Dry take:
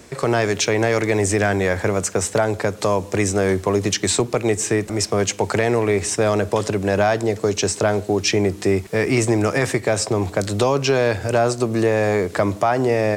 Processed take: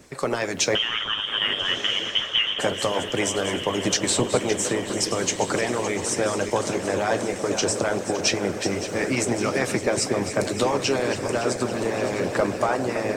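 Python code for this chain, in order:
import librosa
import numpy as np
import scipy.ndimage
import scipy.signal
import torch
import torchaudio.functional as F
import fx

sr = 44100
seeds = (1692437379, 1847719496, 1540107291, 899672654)

y = fx.reverse_delay_fb(x, sr, ms=282, feedback_pct=74, wet_db=-9.5)
y = fx.freq_invert(y, sr, carrier_hz=3500, at=(0.75, 2.59))
y = fx.echo_diffused(y, sr, ms=1340, feedback_pct=40, wet_db=-8.5)
y = fx.rev_double_slope(y, sr, seeds[0], early_s=0.23, late_s=2.5, knee_db=-18, drr_db=7.0)
y = fx.hpss(y, sr, part='harmonic', gain_db=-15)
y = y * 10.0 ** (-1.5 / 20.0)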